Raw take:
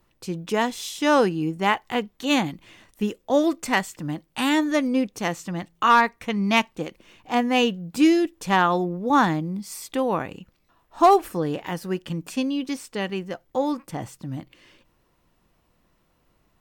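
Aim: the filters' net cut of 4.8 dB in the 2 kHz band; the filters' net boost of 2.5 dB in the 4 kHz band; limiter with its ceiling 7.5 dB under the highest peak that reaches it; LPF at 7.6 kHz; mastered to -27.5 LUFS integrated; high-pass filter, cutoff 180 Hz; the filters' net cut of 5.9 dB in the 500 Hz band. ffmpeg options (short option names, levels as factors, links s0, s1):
-af "highpass=180,lowpass=7600,equalizer=f=500:t=o:g=-7.5,equalizer=f=2000:t=o:g=-8,equalizer=f=4000:t=o:g=7.5,volume=1.06,alimiter=limit=0.211:level=0:latency=1"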